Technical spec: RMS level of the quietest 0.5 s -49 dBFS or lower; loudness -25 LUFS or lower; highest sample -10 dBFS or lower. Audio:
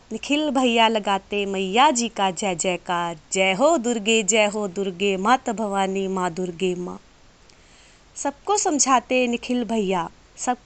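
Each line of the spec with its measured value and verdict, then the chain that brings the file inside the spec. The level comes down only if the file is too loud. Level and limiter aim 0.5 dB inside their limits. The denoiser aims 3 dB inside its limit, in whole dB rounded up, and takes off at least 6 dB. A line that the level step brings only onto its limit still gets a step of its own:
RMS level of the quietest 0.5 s -51 dBFS: pass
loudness -21.5 LUFS: fail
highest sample -5.5 dBFS: fail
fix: trim -4 dB; peak limiter -10.5 dBFS

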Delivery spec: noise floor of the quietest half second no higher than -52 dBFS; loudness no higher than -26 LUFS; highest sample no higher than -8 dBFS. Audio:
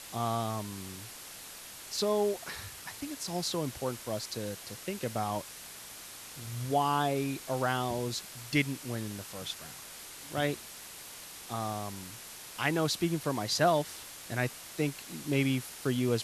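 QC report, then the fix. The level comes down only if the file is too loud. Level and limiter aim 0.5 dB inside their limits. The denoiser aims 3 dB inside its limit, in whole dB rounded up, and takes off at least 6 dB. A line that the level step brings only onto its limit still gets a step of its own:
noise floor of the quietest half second -47 dBFS: fail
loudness -33.5 LUFS: pass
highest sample -14.0 dBFS: pass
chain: noise reduction 8 dB, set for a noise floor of -47 dBFS

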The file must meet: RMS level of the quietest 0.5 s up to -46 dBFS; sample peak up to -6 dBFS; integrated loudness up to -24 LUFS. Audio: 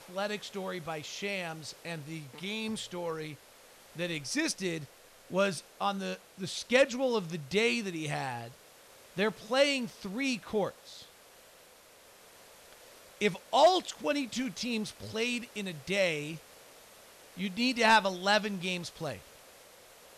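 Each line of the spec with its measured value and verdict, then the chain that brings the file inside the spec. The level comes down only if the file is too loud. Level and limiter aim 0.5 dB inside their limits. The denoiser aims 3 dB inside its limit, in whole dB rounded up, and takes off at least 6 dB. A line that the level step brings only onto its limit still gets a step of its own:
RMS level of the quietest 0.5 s -57 dBFS: pass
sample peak -14.0 dBFS: pass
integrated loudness -31.5 LUFS: pass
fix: none needed

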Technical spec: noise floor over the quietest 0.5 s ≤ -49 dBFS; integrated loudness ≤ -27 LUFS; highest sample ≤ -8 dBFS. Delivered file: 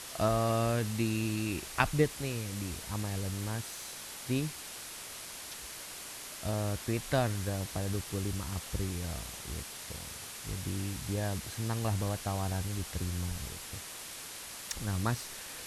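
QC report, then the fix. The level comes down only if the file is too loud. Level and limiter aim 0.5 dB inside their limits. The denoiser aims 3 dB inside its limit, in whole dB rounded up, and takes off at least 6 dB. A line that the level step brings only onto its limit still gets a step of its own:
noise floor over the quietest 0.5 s -45 dBFS: fail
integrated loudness -35.0 LUFS: pass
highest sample -8.5 dBFS: pass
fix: noise reduction 7 dB, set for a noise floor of -45 dBFS

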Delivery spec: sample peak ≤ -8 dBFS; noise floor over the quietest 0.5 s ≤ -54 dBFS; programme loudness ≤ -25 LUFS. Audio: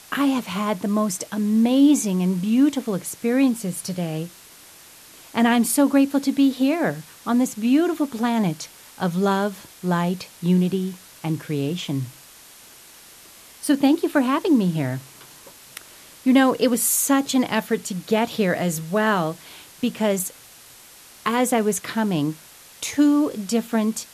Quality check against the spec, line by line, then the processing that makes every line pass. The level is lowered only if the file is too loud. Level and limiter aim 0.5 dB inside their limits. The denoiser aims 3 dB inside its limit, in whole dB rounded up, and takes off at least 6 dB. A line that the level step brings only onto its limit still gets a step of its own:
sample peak -6.0 dBFS: fail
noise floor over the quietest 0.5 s -47 dBFS: fail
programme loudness -21.5 LUFS: fail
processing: noise reduction 6 dB, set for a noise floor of -47 dBFS; trim -4 dB

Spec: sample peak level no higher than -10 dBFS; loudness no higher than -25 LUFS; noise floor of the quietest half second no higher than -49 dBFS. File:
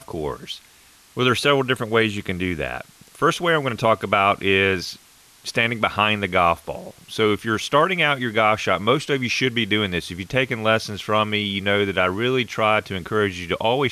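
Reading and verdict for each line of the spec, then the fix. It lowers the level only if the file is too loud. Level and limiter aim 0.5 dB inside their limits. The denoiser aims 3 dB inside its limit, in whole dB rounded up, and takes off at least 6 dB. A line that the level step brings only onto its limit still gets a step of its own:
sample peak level -5.5 dBFS: fail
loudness -20.5 LUFS: fail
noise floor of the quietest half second -52 dBFS: pass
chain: trim -5 dB

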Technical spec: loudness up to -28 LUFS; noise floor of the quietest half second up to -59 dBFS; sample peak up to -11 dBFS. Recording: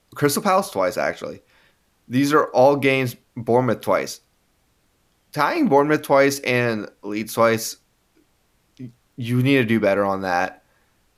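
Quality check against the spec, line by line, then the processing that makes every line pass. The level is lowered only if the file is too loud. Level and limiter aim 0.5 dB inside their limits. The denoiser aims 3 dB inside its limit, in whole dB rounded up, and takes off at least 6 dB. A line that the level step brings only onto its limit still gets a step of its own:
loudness -20.0 LUFS: fail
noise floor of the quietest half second -64 dBFS: pass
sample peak -4.0 dBFS: fail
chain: trim -8.5 dB

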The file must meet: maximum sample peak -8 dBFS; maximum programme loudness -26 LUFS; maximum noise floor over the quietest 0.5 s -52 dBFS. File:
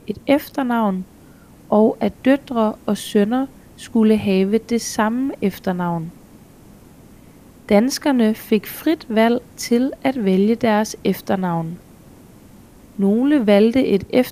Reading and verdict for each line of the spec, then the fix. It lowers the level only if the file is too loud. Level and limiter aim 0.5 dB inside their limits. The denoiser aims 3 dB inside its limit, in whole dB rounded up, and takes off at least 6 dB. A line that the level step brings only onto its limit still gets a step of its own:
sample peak -2.0 dBFS: fail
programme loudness -18.5 LUFS: fail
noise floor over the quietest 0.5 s -45 dBFS: fail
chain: trim -8 dB

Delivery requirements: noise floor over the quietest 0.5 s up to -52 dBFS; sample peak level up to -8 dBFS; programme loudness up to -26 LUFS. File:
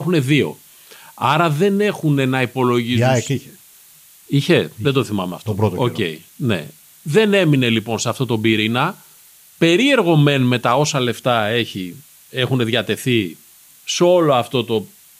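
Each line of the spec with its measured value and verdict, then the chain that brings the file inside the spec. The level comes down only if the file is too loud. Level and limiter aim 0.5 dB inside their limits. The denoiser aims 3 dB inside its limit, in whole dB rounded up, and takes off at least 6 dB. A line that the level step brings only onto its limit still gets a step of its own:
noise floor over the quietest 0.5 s -47 dBFS: fail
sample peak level -3.5 dBFS: fail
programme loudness -17.5 LUFS: fail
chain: trim -9 dB

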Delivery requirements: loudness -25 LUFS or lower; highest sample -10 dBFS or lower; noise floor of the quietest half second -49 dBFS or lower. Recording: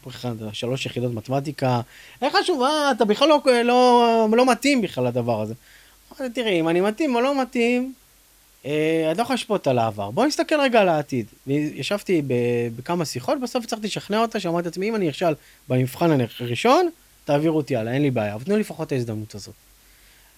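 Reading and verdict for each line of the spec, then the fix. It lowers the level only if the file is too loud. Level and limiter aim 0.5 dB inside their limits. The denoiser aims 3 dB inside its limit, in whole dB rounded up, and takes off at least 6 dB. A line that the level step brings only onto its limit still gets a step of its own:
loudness -21.5 LUFS: fail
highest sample -5.0 dBFS: fail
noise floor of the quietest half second -55 dBFS: pass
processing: trim -4 dB; peak limiter -10.5 dBFS

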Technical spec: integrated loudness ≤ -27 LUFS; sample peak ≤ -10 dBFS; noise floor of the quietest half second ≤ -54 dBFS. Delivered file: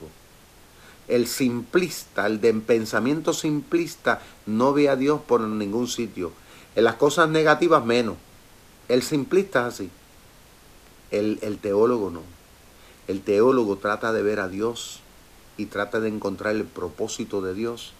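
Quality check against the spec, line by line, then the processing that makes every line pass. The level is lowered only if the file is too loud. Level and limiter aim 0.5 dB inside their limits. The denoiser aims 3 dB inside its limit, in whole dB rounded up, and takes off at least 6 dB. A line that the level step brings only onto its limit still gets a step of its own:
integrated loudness -23.5 LUFS: fail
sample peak -4.5 dBFS: fail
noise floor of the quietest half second -51 dBFS: fail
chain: trim -4 dB; peak limiter -10.5 dBFS

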